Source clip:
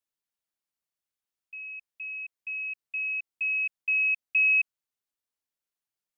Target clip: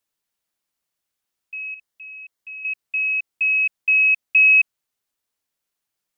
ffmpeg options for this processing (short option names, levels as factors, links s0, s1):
-filter_complex "[0:a]asettb=1/sr,asplit=3[s0][s1][s2];[s0]atrim=end=1.744[s3];[s1]atrim=start=1.74:end=2.65,asetpts=PTS-STARTPTS,afade=t=in:d=0.004:c=qsin,afade=t=out:st=0.906:d=0.004:c=qsin,bandreject=f=2500:w=6.7[s4];[s2]atrim=start=2.646[s5];[s3][s4]acrossfade=d=0.004:c1=hsin:c2=qsin[s6];[s6][s5]acrossfade=d=0.004:c1=qsin:c2=hsin,volume=2.82"